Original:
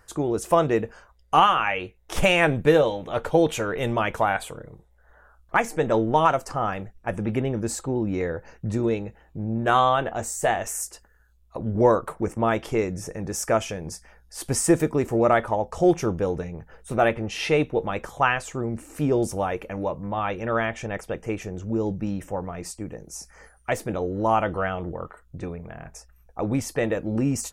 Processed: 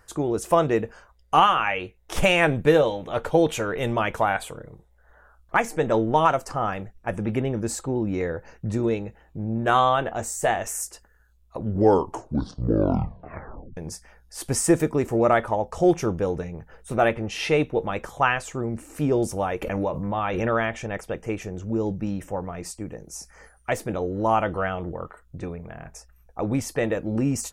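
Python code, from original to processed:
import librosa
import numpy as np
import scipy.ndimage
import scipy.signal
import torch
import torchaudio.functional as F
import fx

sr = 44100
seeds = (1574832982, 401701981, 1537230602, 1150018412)

y = fx.pre_swell(x, sr, db_per_s=24.0, at=(19.62, 20.79))
y = fx.edit(y, sr, fx.tape_stop(start_s=11.62, length_s=2.15), tone=tone)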